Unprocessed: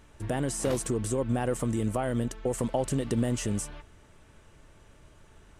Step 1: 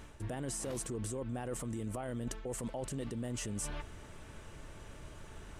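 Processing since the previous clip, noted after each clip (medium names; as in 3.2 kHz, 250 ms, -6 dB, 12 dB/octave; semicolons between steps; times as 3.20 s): peak limiter -26 dBFS, peak gain reduction 10 dB; reverse; compression 6:1, threshold -42 dBFS, peak gain reduction 12 dB; reverse; trim +5.5 dB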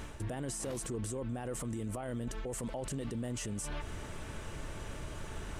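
peak limiter -38 dBFS, peak gain reduction 11 dB; trim +7.5 dB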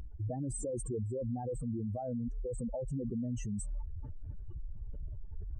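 spectral contrast enhancement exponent 3.3; trim +2.5 dB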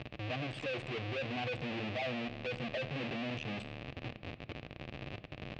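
Schmitt trigger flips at -54 dBFS; cabinet simulation 150–3900 Hz, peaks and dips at 180 Hz -8 dB, 280 Hz -5 dB, 410 Hz -6 dB, 940 Hz -9 dB, 1.4 kHz -8 dB, 2.6 kHz +8 dB; reverberation RT60 1.5 s, pre-delay 7 ms, DRR 13 dB; trim +3.5 dB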